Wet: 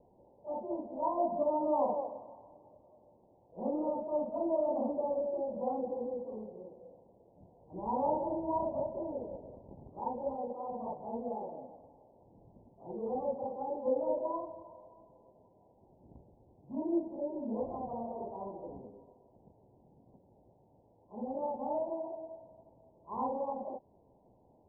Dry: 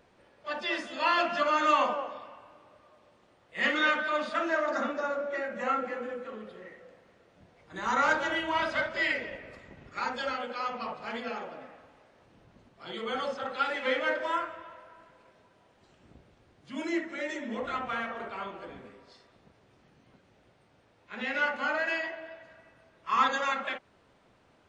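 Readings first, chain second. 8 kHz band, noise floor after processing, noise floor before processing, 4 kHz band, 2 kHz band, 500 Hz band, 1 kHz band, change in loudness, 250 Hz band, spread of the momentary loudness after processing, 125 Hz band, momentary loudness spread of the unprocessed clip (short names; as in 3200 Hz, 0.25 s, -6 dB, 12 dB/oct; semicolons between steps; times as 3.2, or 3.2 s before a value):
under -25 dB, -66 dBFS, -64 dBFS, under -40 dB, under -40 dB, 0.0 dB, -7.0 dB, -6.0 dB, 0.0 dB, 18 LU, +0.5 dB, 19 LU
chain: rattling part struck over -47 dBFS, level -29 dBFS; steep low-pass 950 Hz 96 dB/oct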